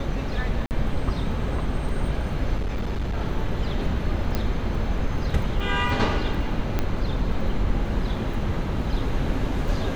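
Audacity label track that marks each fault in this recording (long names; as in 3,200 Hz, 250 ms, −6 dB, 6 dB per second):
0.660000	0.710000	drop-out 49 ms
2.580000	3.170000	clipping −22.5 dBFS
4.350000	4.350000	click −12 dBFS
5.600000	5.600000	drop-out 3.5 ms
6.790000	6.790000	click −10 dBFS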